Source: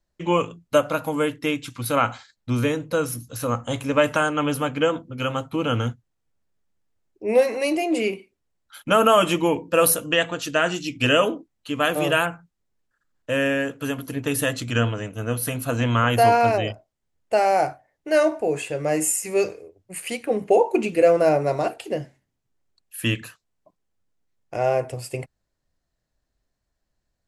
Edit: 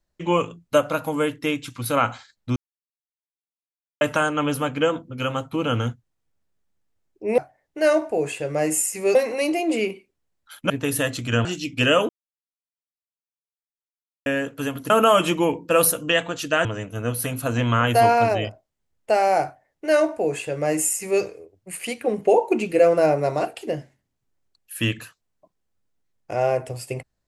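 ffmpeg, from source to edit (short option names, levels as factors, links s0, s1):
-filter_complex "[0:a]asplit=11[s0][s1][s2][s3][s4][s5][s6][s7][s8][s9][s10];[s0]atrim=end=2.56,asetpts=PTS-STARTPTS,afade=t=out:st=2.556:d=0.004:c=hsin[s11];[s1]atrim=start=2.56:end=4.01,asetpts=PTS-STARTPTS,volume=0[s12];[s2]atrim=start=4.01:end=7.382,asetpts=PTS-STARTPTS,afade=t=in:d=0.004:c=hsin[s13];[s3]atrim=start=17.678:end=19.452[s14];[s4]atrim=start=7.378:end=8.932[s15];[s5]atrim=start=14.128:end=14.882[s16];[s6]atrim=start=10.678:end=11.32,asetpts=PTS-STARTPTS,afade=t=out:st=0.638:d=0.004:c=hsin[s17];[s7]atrim=start=11.32:end=13.49,asetpts=PTS-STARTPTS,volume=0[s18];[s8]atrim=start=13.49:end=14.132,asetpts=PTS-STARTPTS,afade=t=in:d=0.004:c=hsin[s19];[s9]atrim=start=8.928:end=10.682[s20];[s10]atrim=start=14.878[s21];[s11][s12][s13]concat=n=3:v=0:a=1[s22];[s22][s14]acrossfade=d=0.004:c1=hsin:c2=hsin[s23];[s23][s15]acrossfade=d=0.004:c1=hsin:c2=hsin[s24];[s24][s16]acrossfade=d=0.004:c1=hsin:c2=hsin[s25];[s17][s18][s19]concat=n=3:v=0:a=1[s26];[s25][s26]acrossfade=d=0.004:c1=hsin:c2=hsin[s27];[s27][s20]acrossfade=d=0.004:c1=hsin:c2=hsin[s28];[s28][s21]acrossfade=d=0.004:c1=hsin:c2=hsin"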